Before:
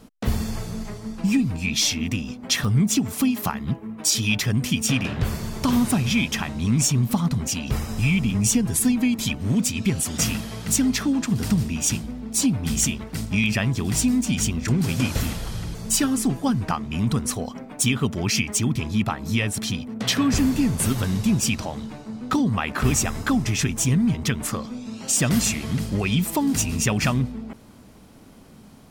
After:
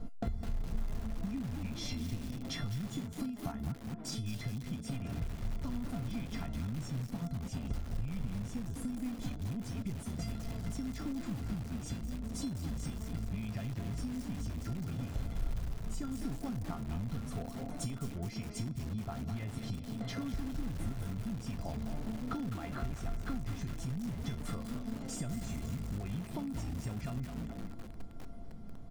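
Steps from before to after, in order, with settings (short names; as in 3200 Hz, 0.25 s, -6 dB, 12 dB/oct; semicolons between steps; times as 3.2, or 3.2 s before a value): low shelf 420 Hz -3 dB; vocal rider 0.5 s; tilt -4 dB/oct; notch 2700 Hz, Q 11; on a send: frequency-shifting echo 0.211 s, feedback 35%, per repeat +31 Hz, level -13 dB; on the sum: compressor 8:1, threshold -24 dBFS, peak gain reduction 24 dB; resonator 690 Hz, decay 0.26 s, mix 90%; lo-fi delay 0.207 s, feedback 55%, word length 8-bit, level -8 dB; gain +6.5 dB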